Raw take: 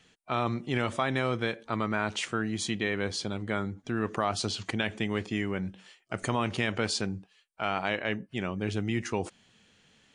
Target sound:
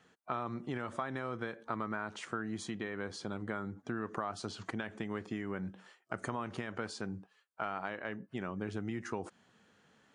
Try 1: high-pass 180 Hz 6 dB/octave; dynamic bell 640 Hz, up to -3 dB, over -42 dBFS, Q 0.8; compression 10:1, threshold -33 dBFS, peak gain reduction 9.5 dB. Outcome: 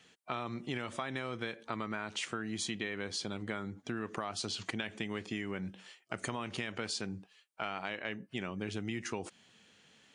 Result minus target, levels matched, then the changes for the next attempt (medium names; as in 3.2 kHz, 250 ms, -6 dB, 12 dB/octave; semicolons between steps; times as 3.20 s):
4 kHz band +8.5 dB
add after compression: resonant high shelf 1.9 kHz -8 dB, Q 1.5